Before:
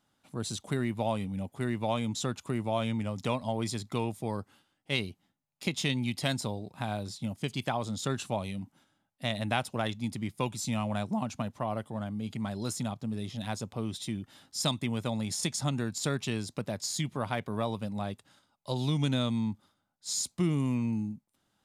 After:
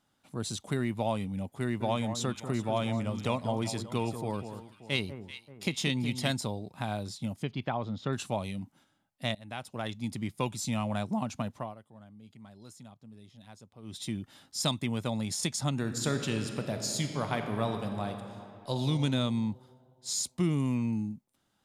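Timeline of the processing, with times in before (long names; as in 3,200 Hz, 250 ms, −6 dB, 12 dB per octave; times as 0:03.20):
0:01.61–0:06.31: delay that swaps between a low-pass and a high-pass 193 ms, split 1,400 Hz, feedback 62%, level −9 dB
0:07.43–0:08.13: high-frequency loss of the air 290 metres
0:09.35–0:10.17: fade in, from −22.5 dB
0:11.54–0:14.03: duck −16.5 dB, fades 0.21 s
0:15.71–0:18.83: thrown reverb, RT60 2.7 s, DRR 5 dB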